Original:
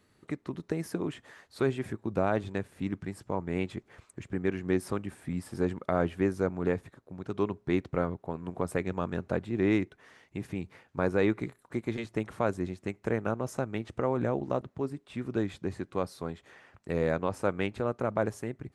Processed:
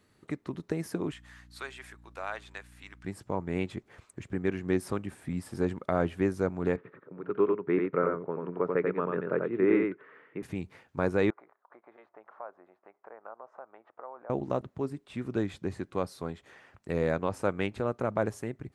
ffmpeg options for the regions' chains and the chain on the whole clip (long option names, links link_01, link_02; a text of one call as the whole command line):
ffmpeg -i in.wav -filter_complex "[0:a]asettb=1/sr,asplit=3[link_01][link_02][link_03];[link_01]atrim=end=1.124[link_04];[link_02]atrim=start=1.12:end=3.05,asetpts=PTS-STARTPTS,afade=type=in:duration=0.004:curve=qsin,afade=type=out:start_time=1.926:duration=0.004:curve=qsin,highpass=1200,aeval=exprs='val(0)+0.002*(sin(2*PI*60*n/s)+sin(2*PI*2*60*n/s)/2+sin(2*PI*3*60*n/s)/3+sin(2*PI*4*60*n/s)/4+sin(2*PI*5*60*n/s)/5)':channel_layout=same[link_05];[link_03]atrim=start=3.046[link_06];[link_04][link_05]acrossfade=duration=0.004:curve1=hsin:curve2=qsin[link_07];[link_07][link_06]acrossfade=duration=0.004:curve1=qsin:curve2=hsin,asettb=1/sr,asplit=3[link_08][link_09][link_10];[link_08]atrim=end=6.764[link_11];[link_09]atrim=start=6.76:end=10.43,asetpts=PTS-STARTPTS,afade=type=in:duration=0.004:curve=qsin,afade=type=out:start_time=3.666:duration=0.004:curve=qsin,highpass=frequency=160:width=0.5412,highpass=frequency=160:width=1.3066,equalizer=frequency=220:width_type=q:width=4:gain=-7,equalizer=frequency=430:width_type=q:width=4:gain=7,equalizer=frequency=740:width_type=q:width=4:gain=-8,equalizer=frequency=1300:width_type=q:width=4:gain=6,lowpass=frequency=2300:width=0.5412,lowpass=frequency=2300:width=1.3066,aecho=1:1:90:0.668,atrim=end_sample=161847[link_12];[link_10]atrim=start=10.426[link_13];[link_11][link_12]acrossfade=duration=0.004:curve1=hsin:curve2=qsin[link_14];[link_14][link_13]acrossfade=duration=0.004:curve1=qsin:curve2=hsin,asettb=1/sr,asplit=3[link_15][link_16][link_17];[link_15]atrim=end=11.304[link_18];[link_16]atrim=start=11.3:end=14.3,asetpts=PTS-STARTPTS,afade=type=in:duration=0.004:curve=qsin,afade=type=out:start_time=2.996:duration=0.004:curve=qsin,acompressor=threshold=-40dB:ratio=2:attack=3.2:release=140:knee=1:detection=peak,asuperpass=centerf=900:order=4:qfactor=1.2[link_19];[link_17]atrim=start=14.296[link_20];[link_18][link_19]acrossfade=duration=0.004:curve1=hsin:curve2=qsin[link_21];[link_21][link_20]acrossfade=duration=0.004:curve1=qsin:curve2=hsin" out.wav